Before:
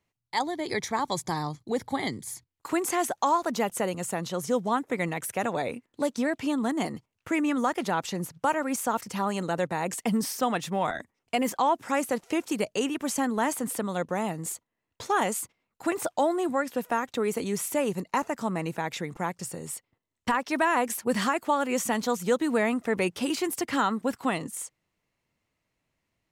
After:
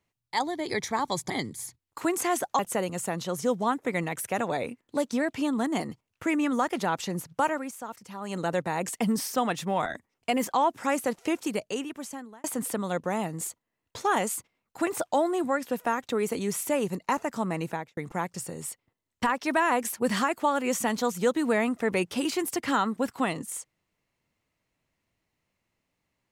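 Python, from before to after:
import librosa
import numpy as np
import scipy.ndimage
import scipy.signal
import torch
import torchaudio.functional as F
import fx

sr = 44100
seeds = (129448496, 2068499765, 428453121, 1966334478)

y = fx.studio_fade_out(x, sr, start_s=18.75, length_s=0.27)
y = fx.edit(y, sr, fx.cut(start_s=1.3, length_s=0.68),
    fx.cut(start_s=3.27, length_s=0.37),
    fx.fade_down_up(start_s=8.55, length_s=0.91, db=-11.0, fade_s=0.21),
    fx.fade_out_span(start_s=12.38, length_s=1.11), tone=tone)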